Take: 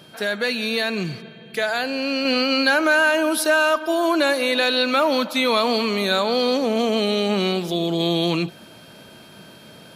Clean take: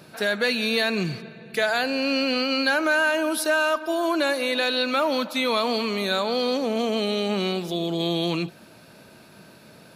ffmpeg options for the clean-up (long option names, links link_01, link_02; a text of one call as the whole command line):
ffmpeg -i in.wav -af "bandreject=frequency=3200:width=30,asetnsamples=nb_out_samples=441:pad=0,asendcmd='2.25 volume volume -4dB',volume=0dB" out.wav